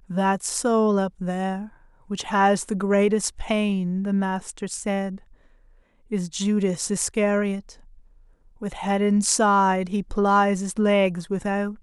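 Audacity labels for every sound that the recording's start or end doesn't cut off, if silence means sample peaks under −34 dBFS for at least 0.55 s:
6.110000	7.710000	sound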